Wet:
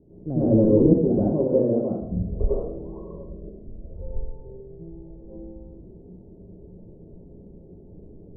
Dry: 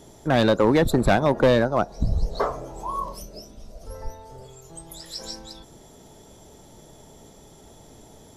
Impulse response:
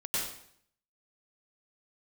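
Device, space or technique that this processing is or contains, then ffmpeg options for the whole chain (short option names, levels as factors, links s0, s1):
next room: -filter_complex "[0:a]lowpass=f=450:w=0.5412,lowpass=f=450:w=1.3066[s0];[1:a]atrim=start_sample=2205[s1];[s0][s1]afir=irnorm=-1:irlink=0,asettb=1/sr,asplit=3[s2][s3][s4];[s2]atrim=end=0.934[s5];[s3]atrim=start=0.93:end=2.41,asetpts=PTS-STARTPTS,afade=t=in:d=0.004:c=qsin,afade=t=out:st=1.476:d=0.004:c=qsin,highpass=f=240:p=1[s6];[s4]atrim=start=2.406[s7];[s5][s6]acrossfade=d=0.004:c1=hsin:c2=qsin[s8];[s8][s7]acrossfade=d=0.004:c1=qsin:c2=hsin,volume=0.891"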